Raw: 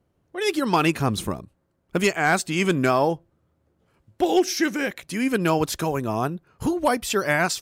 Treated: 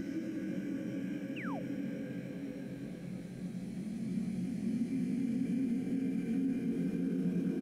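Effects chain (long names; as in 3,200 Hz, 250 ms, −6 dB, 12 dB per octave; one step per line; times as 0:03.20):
double-tracking delay 22 ms −2 dB
feedback delay with all-pass diffusion 1,095 ms, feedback 55%, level −11 dB
extreme stretch with random phases 12×, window 0.50 s, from 0:04.74
brickwall limiter −14 dBFS, peak gain reduction 6.5 dB
drawn EQ curve 180 Hz 0 dB, 930 Hz −26 dB, 4,800 Hz −20 dB
sound drawn into the spectrogram fall, 0:01.36–0:01.60, 560–3,000 Hz −40 dBFS
level −5 dB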